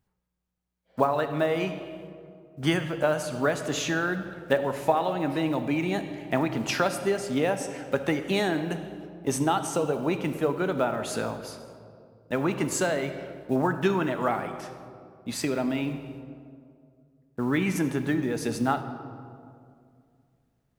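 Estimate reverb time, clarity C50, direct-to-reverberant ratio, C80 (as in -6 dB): 2.3 s, 10.0 dB, 8.5 dB, 11.0 dB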